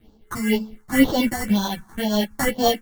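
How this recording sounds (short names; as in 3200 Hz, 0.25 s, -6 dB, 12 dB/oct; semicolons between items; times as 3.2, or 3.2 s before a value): aliases and images of a low sample rate 2500 Hz, jitter 0%; phasing stages 4, 2 Hz, lowest notch 480–2000 Hz; tremolo triangle 4.2 Hz, depth 60%; a shimmering, thickened sound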